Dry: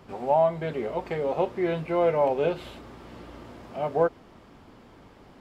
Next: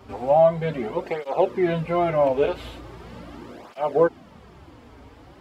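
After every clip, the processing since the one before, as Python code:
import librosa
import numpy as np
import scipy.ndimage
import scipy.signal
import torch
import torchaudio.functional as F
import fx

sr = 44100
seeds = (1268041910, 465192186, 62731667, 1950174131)

y = fx.peak_eq(x, sr, hz=66.0, db=10.0, octaves=0.35)
y = fx.flanger_cancel(y, sr, hz=0.4, depth_ms=6.1)
y = y * 10.0 ** (6.5 / 20.0)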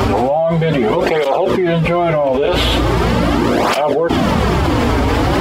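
y = fx.dynamic_eq(x, sr, hz=3300.0, q=6.3, threshold_db=-58.0, ratio=4.0, max_db=6)
y = fx.env_flatten(y, sr, amount_pct=100)
y = y * 10.0 ** (-1.0 / 20.0)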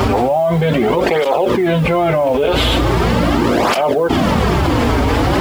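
y = fx.mod_noise(x, sr, seeds[0], snr_db=33)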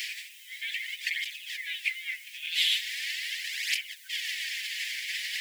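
y = scipy.signal.sosfilt(scipy.signal.butter(16, 1800.0, 'highpass', fs=sr, output='sos'), x)
y = y * 10.0 ** (-6.0 / 20.0)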